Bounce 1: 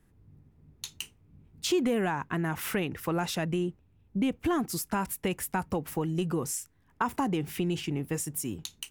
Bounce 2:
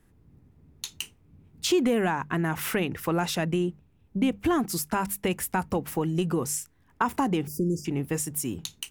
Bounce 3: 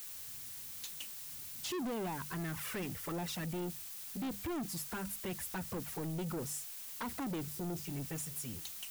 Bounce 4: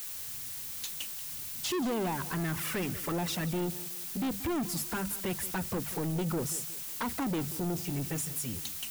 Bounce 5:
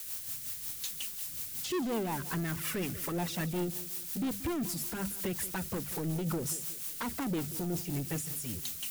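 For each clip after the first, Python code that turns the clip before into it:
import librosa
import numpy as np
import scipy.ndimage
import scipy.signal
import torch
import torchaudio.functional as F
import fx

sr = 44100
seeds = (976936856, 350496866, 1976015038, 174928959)

y1 = fx.spec_erase(x, sr, start_s=7.47, length_s=0.38, low_hz=610.0, high_hz=4700.0)
y1 = fx.hum_notches(y1, sr, base_hz=50, count=4)
y1 = F.gain(torch.from_numpy(y1), 3.5).numpy()
y2 = fx.env_flanger(y1, sr, rest_ms=9.3, full_db=-21.0)
y2 = fx.dmg_noise_colour(y2, sr, seeds[0], colour='blue', level_db=-41.0)
y2 = 10.0 ** (-30.5 / 20.0) * np.tanh(y2 / 10.0 ** (-30.5 / 20.0))
y2 = F.gain(torch.from_numpy(y2), -5.0).numpy()
y3 = fx.echo_feedback(y2, sr, ms=182, feedback_pct=41, wet_db=-16.0)
y3 = F.gain(torch.from_numpy(y3), 6.5).numpy()
y4 = y3 + 0.5 * 10.0 ** (-39.0 / 20.0) * np.diff(np.sign(y3), prepend=np.sign(y3[:1]))
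y4 = fx.rotary(y4, sr, hz=5.5)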